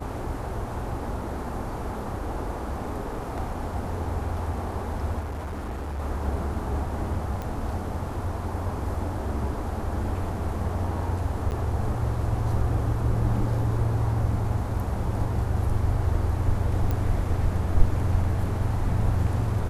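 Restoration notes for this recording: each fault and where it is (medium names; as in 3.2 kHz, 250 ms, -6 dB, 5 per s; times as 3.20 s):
5.19–6.00 s: clipped -29 dBFS
7.42 s: pop -20 dBFS
11.51–11.52 s: dropout 9.8 ms
16.91 s: pop -16 dBFS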